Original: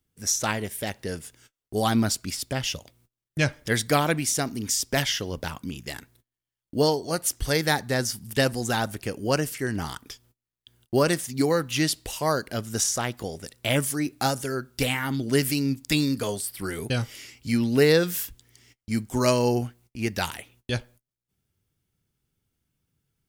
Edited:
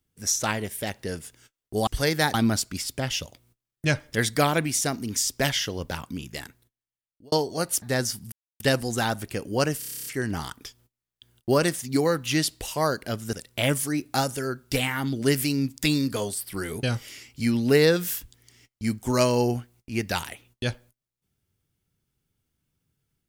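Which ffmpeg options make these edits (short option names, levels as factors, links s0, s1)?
-filter_complex "[0:a]asplit=16[s0][s1][s2][s3][s4][s5][s6][s7][s8][s9][s10][s11][s12][s13][s14][s15];[s0]atrim=end=1.872[s16];[s1]atrim=start=7.348:end=7.822[s17];[s2]atrim=start=1.868:end=6.85,asetpts=PTS-STARTPTS,afade=t=out:st=3.962:d=1.02[s18];[s3]atrim=start=6.85:end=7.352,asetpts=PTS-STARTPTS,afade=t=in:d=0.004:c=hsin[s19];[s4]atrim=start=7.818:end=8.32,asetpts=PTS-STARTPTS,afade=t=out:st=0.498:d=0.004:c=hsin,apad=pad_dur=0.28[s20];[s5]atrim=start=8.32:end=9.542,asetpts=PTS-STARTPTS,afade=t=in:d=0.004:c=hsin[s21];[s6]atrim=start=9.508:end=9.542[s22];[s7]atrim=start=9.508:end=9.542[s23];[s8]atrim=start=9.508:end=9.542[s24];[s9]atrim=start=9.508:end=9.542[s25];[s10]atrim=start=9.508:end=9.542[s26];[s11]atrim=start=9.508:end=9.542[s27];[s12]atrim=start=9.508:end=9.542[s28];[s13]atrim=start=9.508:end=9.542[s29];[s14]atrim=start=9.508:end=12.782[s30];[s15]atrim=start=13.398[s31];[s16][s17]acrossfade=d=0.004:c1=hsin:c2=hsin[s32];[s18][s19]concat=n=2:v=0:a=1[s33];[s32][s33]acrossfade=d=0.004:c1=hsin:c2=hsin[s34];[s20][s21]concat=n=2:v=0:a=1[s35];[s34][s35]acrossfade=d=0.004:c1=hsin:c2=hsin[s36];[s36][s22]acrossfade=d=0.004:c1=hsin:c2=hsin[s37];[s37][s23]acrossfade=d=0.004:c1=hsin:c2=hsin[s38];[s38][s24]acrossfade=d=0.004:c1=hsin:c2=hsin[s39];[s39][s25]acrossfade=d=0.004:c1=hsin:c2=hsin[s40];[s40][s26]acrossfade=d=0.004:c1=hsin:c2=hsin[s41];[s41][s27]acrossfade=d=0.004:c1=hsin:c2=hsin[s42];[s42][s28]acrossfade=d=0.004:c1=hsin:c2=hsin[s43];[s43][s29]acrossfade=d=0.004:c1=hsin:c2=hsin[s44];[s44][s30]acrossfade=d=0.004:c1=hsin:c2=hsin[s45];[s45][s31]acrossfade=d=0.004:c1=hsin:c2=hsin"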